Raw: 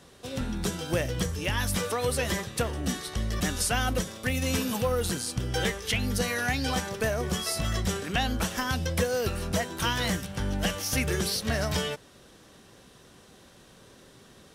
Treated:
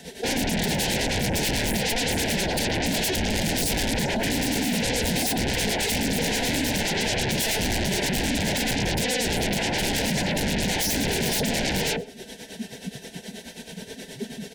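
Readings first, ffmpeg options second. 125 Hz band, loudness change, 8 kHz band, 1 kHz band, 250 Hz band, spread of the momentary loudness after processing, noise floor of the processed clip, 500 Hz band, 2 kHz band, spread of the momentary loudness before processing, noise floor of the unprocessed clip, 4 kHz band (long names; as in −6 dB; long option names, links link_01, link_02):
+1.5 dB, +5.0 dB, +6.0 dB, +3.0 dB, +6.0 dB, 14 LU, −44 dBFS, +3.0 dB, +5.0 dB, 4 LU, −54 dBFS, +7.0 dB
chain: -filter_complex "[0:a]afftdn=noise_reduction=27:noise_floor=-37,acrossover=split=2600[link_01][link_02];[link_02]acompressor=threshold=-46dB:ratio=4:attack=1:release=60[link_03];[link_01][link_03]amix=inputs=2:normalize=0,highshelf=frequency=8900:gain=11.5,aecho=1:1:4.5:0.72,asplit=2[link_04][link_05];[link_05]highpass=frequency=720:poles=1,volume=23dB,asoftclip=type=tanh:threshold=-12.5dB[link_06];[link_04][link_06]amix=inputs=2:normalize=0,lowpass=frequency=2900:poles=1,volume=-6dB,acrossover=split=370[link_07][link_08];[link_07]lowshelf=frequency=270:gain=8.5[link_09];[link_08]acompressor=threshold=-38dB:ratio=5[link_10];[link_09][link_10]amix=inputs=2:normalize=0,asoftclip=type=tanh:threshold=-28dB,tremolo=f=9.4:d=0.7,aeval=exprs='0.0398*sin(PI/2*7.94*val(0)/0.0398)':channel_layout=same,asuperstop=centerf=1200:order=4:qfactor=1.6,asplit=2[link_11][link_12];[link_12]adelay=122.4,volume=-23dB,highshelf=frequency=4000:gain=-2.76[link_13];[link_11][link_13]amix=inputs=2:normalize=0,volume=7dB"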